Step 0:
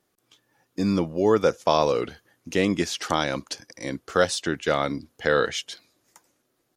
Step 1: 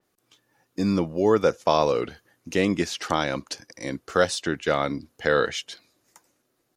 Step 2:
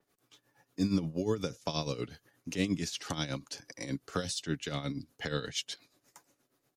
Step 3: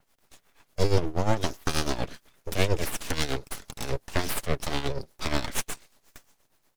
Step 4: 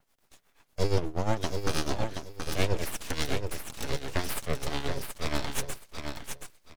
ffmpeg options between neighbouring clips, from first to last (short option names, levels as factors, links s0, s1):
-af "bandreject=f=3300:w=25,adynamicequalizer=threshold=0.00794:dfrequency=4600:dqfactor=0.7:tfrequency=4600:tqfactor=0.7:attack=5:release=100:ratio=0.375:range=2.5:mode=cutabove:tftype=highshelf"
-filter_complex "[0:a]acrossover=split=260|3000[s0][s1][s2];[s1]acompressor=threshold=0.01:ratio=3[s3];[s0][s3][s2]amix=inputs=3:normalize=0,aecho=1:1:7.1:0.32,tremolo=f=8.4:d=0.72"
-af "aeval=exprs='abs(val(0))':c=same,volume=2.82"
-af "aecho=1:1:726|1452|2178:0.501|0.105|0.0221,volume=0.668"